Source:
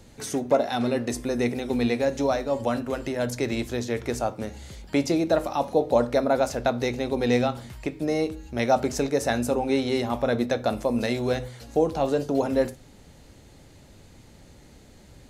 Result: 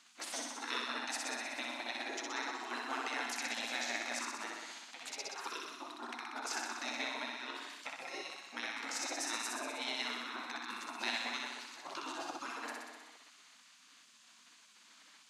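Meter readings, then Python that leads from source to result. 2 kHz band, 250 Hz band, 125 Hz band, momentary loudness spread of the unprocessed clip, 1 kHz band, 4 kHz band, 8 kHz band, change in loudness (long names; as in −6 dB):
−4.0 dB, −23.5 dB, below −40 dB, 6 LU, −12.0 dB, −3.0 dB, −3.5 dB, −14.0 dB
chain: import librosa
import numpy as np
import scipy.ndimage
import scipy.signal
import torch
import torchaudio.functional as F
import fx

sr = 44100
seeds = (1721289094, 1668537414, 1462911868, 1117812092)

p1 = fx.over_compress(x, sr, threshold_db=-26.0, ratio=-0.5)
p2 = scipy.signal.sosfilt(scipy.signal.cheby1(4, 1.0, 370.0, 'highpass', fs=sr, output='sos'), p1)
p3 = fx.air_absorb(p2, sr, metres=61.0)
p4 = p3 + fx.room_flutter(p3, sr, wall_m=10.7, rt60_s=1.3, dry=0)
p5 = fx.spec_gate(p4, sr, threshold_db=-15, keep='weak')
y = p5 * 10.0 ** (-2.0 / 20.0)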